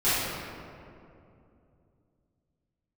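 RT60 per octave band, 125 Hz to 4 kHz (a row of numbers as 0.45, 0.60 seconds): 3.8, 3.4, 2.9, 2.3, 1.8, 1.2 seconds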